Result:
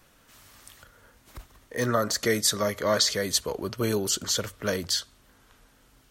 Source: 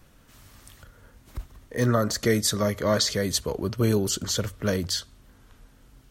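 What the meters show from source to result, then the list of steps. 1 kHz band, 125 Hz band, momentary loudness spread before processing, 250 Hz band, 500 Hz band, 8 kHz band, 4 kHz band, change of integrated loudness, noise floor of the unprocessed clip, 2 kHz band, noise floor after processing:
+0.5 dB, -8.0 dB, 14 LU, -5.0 dB, -1.5 dB, +1.5 dB, +1.5 dB, -1.0 dB, -56 dBFS, +1.0 dB, -60 dBFS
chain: low shelf 290 Hz -11 dB; gain +1.5 dB

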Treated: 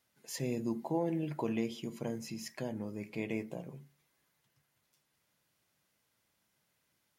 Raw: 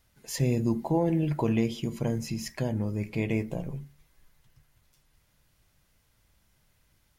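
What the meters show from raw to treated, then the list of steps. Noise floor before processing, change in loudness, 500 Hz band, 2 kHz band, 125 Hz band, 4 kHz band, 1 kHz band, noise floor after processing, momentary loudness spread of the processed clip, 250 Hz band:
-69 dBFS, -8.5 dB, -6.5 dB, -6.5 dB, -13.5 dB, -6.5 dB, -6.5 dB, -79 dBFS, 10 LU, -8.0 dB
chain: HPF 190 Hz 12 dB/oct; gain -6.5 dB

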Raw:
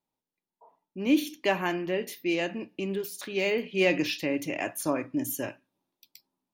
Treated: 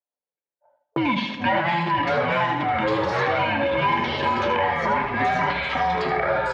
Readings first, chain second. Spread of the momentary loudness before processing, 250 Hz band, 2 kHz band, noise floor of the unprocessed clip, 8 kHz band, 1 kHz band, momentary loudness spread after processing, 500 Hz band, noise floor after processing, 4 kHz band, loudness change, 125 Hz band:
9 LU, +1.5 dB, +9.5 dB, under -85 dBFS, under -10 dB, +18.0 dB, 2 LU, +5.5 dB, under -85 dBFS, +6.0 dB, +7.0 dB, +10.5 dB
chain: band inversion scrambler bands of 500 Hz; gate -50 dBFS, range -40 dB; low shelf 200 Hz -11 dB; comb 6.9 ms, depth 58%; sample leveller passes 2; compressor 1.5:1, threshold -26 dBFS, peak gain reduction 4.5 dB; transient shaper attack -5 dB, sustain +10 dB; echoes that change speed 0.109 s, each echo -5 st, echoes 3; speaker cabinet 110–3400 Hz, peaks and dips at 120 Hz -6 dB, 190 Hz -6 dB, 280 Hz -5 dB, 530 Hz +9 dB, 890 Hz +5 dB, 2800 Hz -5 dB; echo 78 ms -8.5 dB; digital reverb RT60 3.6 s, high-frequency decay 0.7×, pre-delay 10 ms, DRR 14.5 dB; three-band squash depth 100%

